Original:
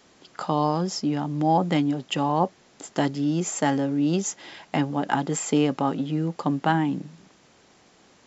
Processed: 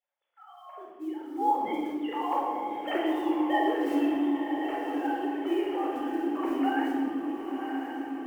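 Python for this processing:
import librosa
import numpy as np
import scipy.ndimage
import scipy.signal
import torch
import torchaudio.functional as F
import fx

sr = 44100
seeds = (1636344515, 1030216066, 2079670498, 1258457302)

p1 = fx.sine_speech(x, sr)
p2 = fx.doppler_pass(p1, sr, speed_mps=12, closest_m=3.2, pass_at_s=3.6)
p3 = fx.recorder_agc(p2, sr, target_db=-18.5, rise_db_per_s=8.6, max_gain_db=30)
p4 = fx.hum_notches(p3, sr, base_hz=50, count=6)
p5 = fx.quant_float(p4, sr, bits=4)
p6 = p5 + fx.echo_diffused(p5, sr, ms=1047, feedback_pct=55, wet_db=-6.0, dry=0)
p7 = fx.room_shoebox(p6, sr, seeds[0], volume_m3=1500.0, walls='mixed', distance_m=4.2)
y = F.gain(torch.from_numpy(p7), -8.0).numpy()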